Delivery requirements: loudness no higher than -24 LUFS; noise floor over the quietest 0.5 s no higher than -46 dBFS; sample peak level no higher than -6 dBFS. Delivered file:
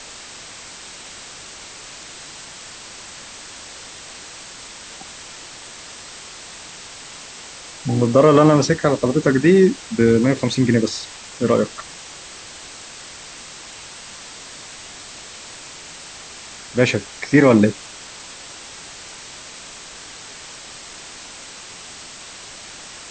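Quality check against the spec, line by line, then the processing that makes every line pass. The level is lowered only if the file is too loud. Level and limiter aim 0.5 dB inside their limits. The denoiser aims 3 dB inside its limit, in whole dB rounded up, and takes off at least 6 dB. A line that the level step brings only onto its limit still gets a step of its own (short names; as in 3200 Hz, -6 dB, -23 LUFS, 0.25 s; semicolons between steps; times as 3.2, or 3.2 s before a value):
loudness -16.5 LUFS: fail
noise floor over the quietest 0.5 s -38 dBFS: fail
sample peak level -2.0 dBFS: fail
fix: denoiser 6 dB, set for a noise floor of -38 dBFS; gain -8 dB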